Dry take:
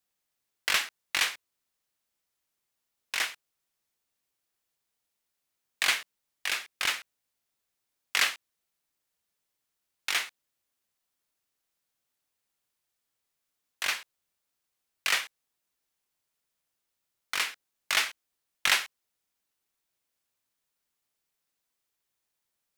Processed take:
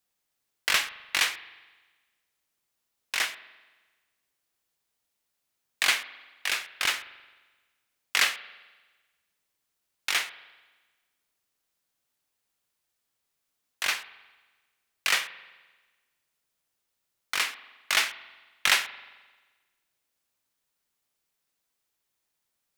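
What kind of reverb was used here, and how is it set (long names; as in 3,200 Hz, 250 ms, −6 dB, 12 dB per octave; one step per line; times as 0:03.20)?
spring reverb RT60 1.3 s, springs 43 ms, chirp 40 ms, DRR 14.5 dB
level +2 dB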